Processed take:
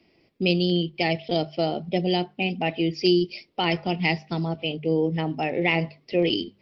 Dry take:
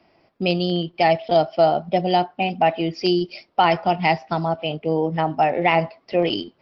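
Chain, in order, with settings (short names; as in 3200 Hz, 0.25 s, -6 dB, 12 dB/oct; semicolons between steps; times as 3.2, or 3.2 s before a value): band shelf 990 Hz -11.5 dB; notches 50/100/150/200 Hz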